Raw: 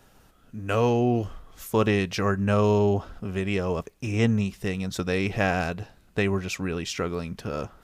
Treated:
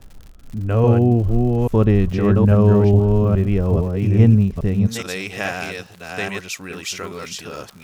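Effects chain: reverse delay 0.419 s, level -3 dB; tilt -4 dB/oct, from 4.86 s +2.5 dB/oct; crackle 130/s -33 dBFS; gain -1 dB

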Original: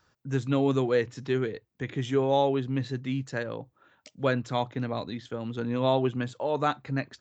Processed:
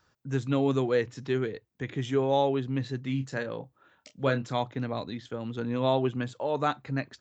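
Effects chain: 3.02–4.53 doubler 30 ms -9.5 dB; gain -1 dB

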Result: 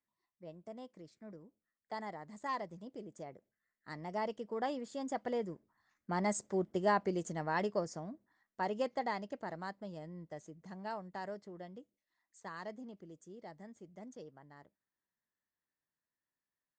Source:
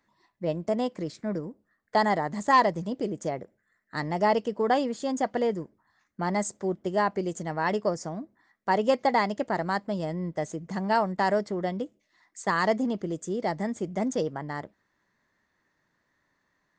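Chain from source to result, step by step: Doppler pass-by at 6.76, 6 m/s, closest 5.8 m; gain -5 dB

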